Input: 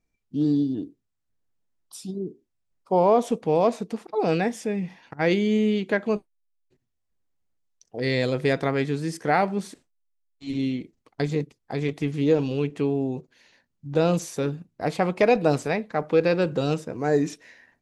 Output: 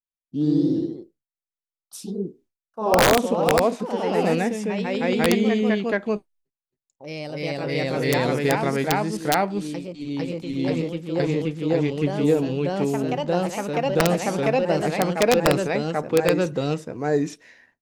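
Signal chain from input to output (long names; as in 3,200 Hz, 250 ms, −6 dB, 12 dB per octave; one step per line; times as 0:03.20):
downward expander −53 dBFS
delay with pitch and tempo change per echo 109 ms, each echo +1 semitone, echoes 3
wrap-around overflow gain 8 dB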